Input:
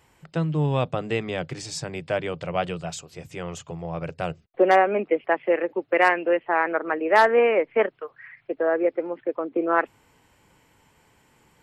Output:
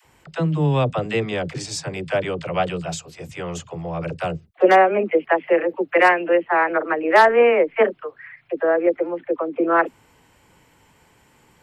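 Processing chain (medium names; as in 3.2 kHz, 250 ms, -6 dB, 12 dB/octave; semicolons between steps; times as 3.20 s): phase dispersion lows, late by 51 ms, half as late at 470 Hz; trim +4 dB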